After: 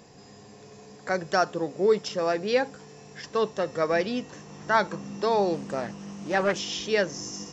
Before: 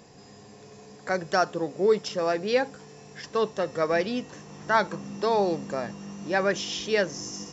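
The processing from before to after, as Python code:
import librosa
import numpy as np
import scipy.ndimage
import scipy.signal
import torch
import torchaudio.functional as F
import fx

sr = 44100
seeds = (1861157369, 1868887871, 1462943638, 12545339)

y = fx.doppler_dist(x, sr, depth_ms=0.26, at=(5.54, 6.59))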